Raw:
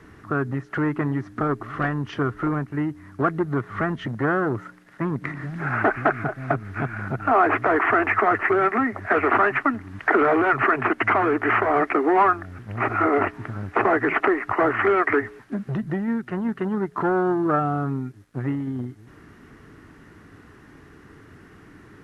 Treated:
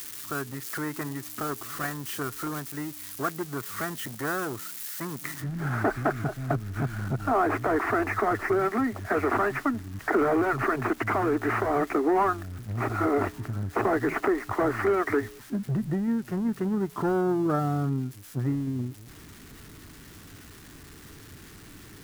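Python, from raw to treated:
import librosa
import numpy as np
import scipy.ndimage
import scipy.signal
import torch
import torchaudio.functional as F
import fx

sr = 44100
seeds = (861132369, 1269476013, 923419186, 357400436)

y = x + 0.5 * 10.0 ** (-24.0 / 20.0) * np.diff(np.sign(x), prepend=np.sign(x[:1]))
y = fx.tilt_eq(y, sr, slope=fx.steps((0.0, 1.5), (5.4, -2.5)))
y = y * 10.0 ** (-7.0 / 20.0)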